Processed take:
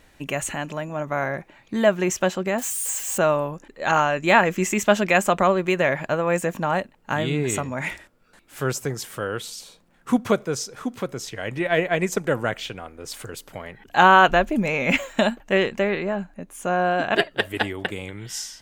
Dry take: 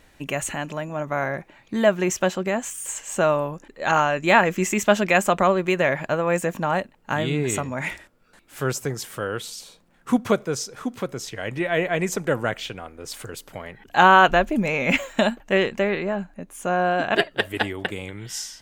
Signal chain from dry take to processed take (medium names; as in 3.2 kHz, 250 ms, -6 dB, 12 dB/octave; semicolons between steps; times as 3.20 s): 2.58–3.18 s: zero-crossing glitches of -26.5 dBFS; 11.65–12.24 s: transient shaper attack +5 dB, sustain -3 dB